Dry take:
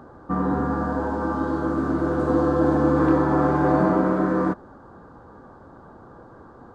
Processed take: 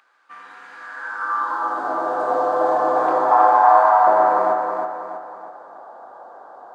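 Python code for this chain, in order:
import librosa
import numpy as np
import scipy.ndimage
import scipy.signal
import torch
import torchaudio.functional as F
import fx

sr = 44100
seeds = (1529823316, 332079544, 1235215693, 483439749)

y = fx.low_shelf_res(x, sr, hz=580.0, db=-14.0, q=3.0, at=(3.31, 4.07))
y = fx.filter_sweep_highpass(y, sr, from_hz=2400.0, to_hz=690.0, start_s=0.73, end_s=1.89, q=4.1)
y = fx.echo_feedback(y, sr, ms=321, feedback_pct=44, wet_db=-4.5)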